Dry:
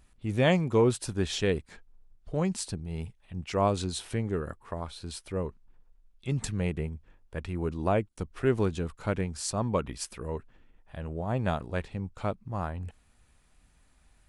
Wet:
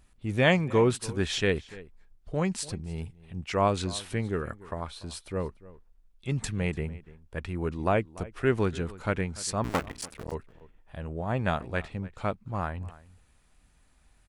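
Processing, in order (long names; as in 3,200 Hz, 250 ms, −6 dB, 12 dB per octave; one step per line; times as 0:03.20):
0:09.64–0:10.32: sub-harmonics by changed cycles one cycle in 2, muted
dynamic equaliser 1,900 Hz, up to +6 dB, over −46 dBFS, Q 0.88
slap from a distant wall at 50 metres, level −19 dB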